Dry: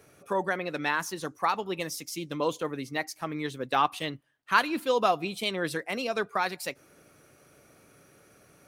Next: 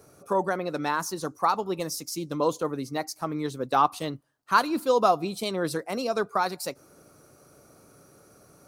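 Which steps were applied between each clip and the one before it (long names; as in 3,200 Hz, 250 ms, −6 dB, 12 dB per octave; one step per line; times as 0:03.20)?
flat-topped bell 2,400 Hz −10 dB 1.3 octaves
level +3.5 dB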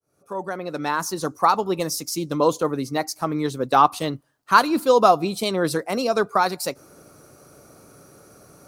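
fade in at the beginning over 1.28 s
level +6 dB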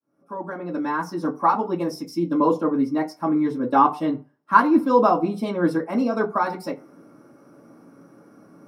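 convolution reverb RT60 0.35 s, pre-delay 3 ms, DRR −7.5 dB
level −18 dB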